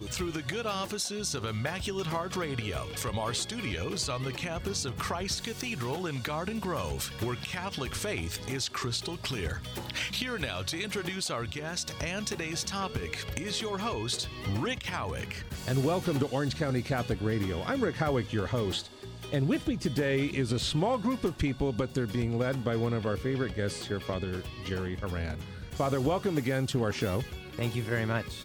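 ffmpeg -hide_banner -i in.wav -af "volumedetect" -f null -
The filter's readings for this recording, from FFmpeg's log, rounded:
mean_volume: -31.8 dB
max_volume: -14.1 dB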